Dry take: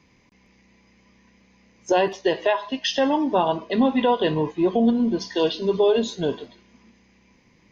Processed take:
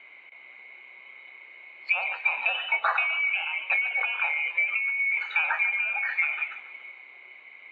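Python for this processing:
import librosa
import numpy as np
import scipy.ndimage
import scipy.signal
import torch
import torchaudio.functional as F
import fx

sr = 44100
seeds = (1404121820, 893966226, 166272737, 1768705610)

p1 = fx.band_swap(x, sr, width_hz=2000)
p2 = fx.dynamic_eq(p1, sr, hz=1400.0, q=0.83, threshold_db=-34.0, ratio=4.0, max_db=-6)
p3 = scipy.signal.sosfilt(scipy.signal.butter(4, 2400.0, 'lowpass', fs=sr, output='sos'), p2)
p4 = fx.over_compress(p3, sr, threshold_db=-33.0, ratio=-1.0)
p5 = p3 + (p4 * librosa.db_to_amplitude(2.0))
p6 = scipy.signal.sosfilt(scipy.signal.butter(2, 860.0, 'highpass', fs=sr, output='sos'), p5)
p7 = fx.env_lowpass_down(p6, sr, base_hz=1400.0, full_db=-19.0)
p8 = p7 + fx.echo_feedback(p7, sr, ms=141, feedback_pct=45, wet_db=-14.5, dry=0)
y = p8 * librosa.db_to_amplitude(2.0)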